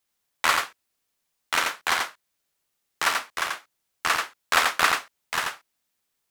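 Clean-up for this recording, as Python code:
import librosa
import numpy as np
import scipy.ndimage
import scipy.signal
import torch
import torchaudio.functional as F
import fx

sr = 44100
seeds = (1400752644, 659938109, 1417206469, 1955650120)

y = fx.fix_interpolate(x, sr, at_s=(0.6, 3.99), length_ms=1.0)
y = fx.fix_echo_inverse(y, sr, delay_ms=86, level_db=-4.0)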